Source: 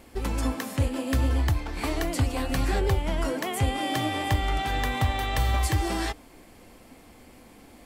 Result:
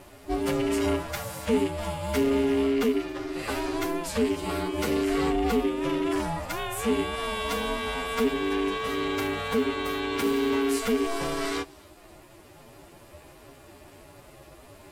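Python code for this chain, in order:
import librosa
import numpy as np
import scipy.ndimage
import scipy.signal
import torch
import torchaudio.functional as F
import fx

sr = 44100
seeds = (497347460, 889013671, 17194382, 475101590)

p1 = fx.rattle_buzz(x, sr, strikes_db=-25.0, level_db=-24.0)
p2 = fx.dynamic_eq(p1, sr, hz=290.0, q=5.7, threshold_db=-46.0, ratio=4.0, max_db=-6)
p3 = fx.rider(p2, sr, range_db=10, speed_s=2.0)
p4 = p3 + fx.echo_wet_highpass(p3, sr, ms=144, feedback_pct=36, hz=2800.0, wet_db=-23, dry=0)
p5 = fx.stretch_vocoder(p4, sr, factor=1.9)
p6 = 10.0 ** (-23.0 / 20.0) * np.tanh(p5 / 10.0 ** (-23.0 / 20.0))
p7 = p5 + (p6 * librosa.db_to_amplitude(-4.0))
p8 = p7 * np.sin(2.0 * np.pi * 340.0 * np.arange(len(p7)) / sr)
y = p8 * librosa.db_to_amplitude(-1.5)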